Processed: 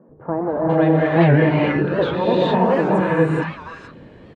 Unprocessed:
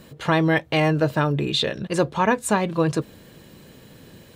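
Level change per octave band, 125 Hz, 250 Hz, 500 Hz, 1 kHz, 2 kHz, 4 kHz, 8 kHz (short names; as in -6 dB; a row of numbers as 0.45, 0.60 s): +5.5 dB, +5.5 dB, +6.5 dB, +3.0 dB, +1.0 dB, -6.0 dB, under -20 dB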